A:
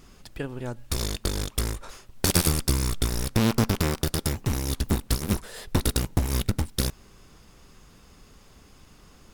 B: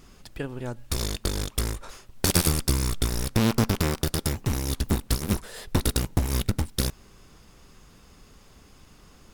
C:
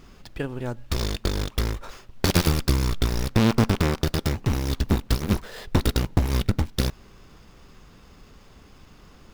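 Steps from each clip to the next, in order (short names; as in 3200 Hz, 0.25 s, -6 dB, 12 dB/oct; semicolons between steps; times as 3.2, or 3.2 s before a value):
nothing audible
median filter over 5 samples; gain +3 dB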